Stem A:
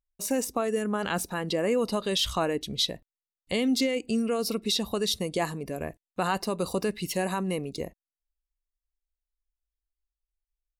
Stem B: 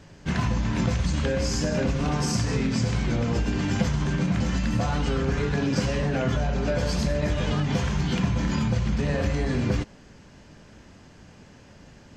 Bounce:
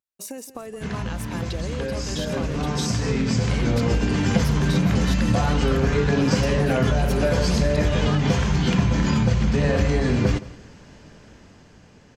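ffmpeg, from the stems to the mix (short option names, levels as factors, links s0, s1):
-filter_complex "[0:a]highpass=150,acompressor=threshold=0.0251:ratio=6,volume=0.944,asplit=2[s0][s1];[s1]volume=0.178[s2];[1:a]equalizer=f=450:t=o:w=0.21:g=3.5,dynaudnorm=f=940:g=5:m=3.76,adelay=550,volume=0.562,asplit=2[s3][s4];[s4]volume=0.106[s5];[s2][s5]amix=inputs=2:normalize=0,aecho=0:1:169|338|507|676:1|0.28|0.0784|0.022[s6];[s0][s3][s6]amix=inputs=3:normalize=0"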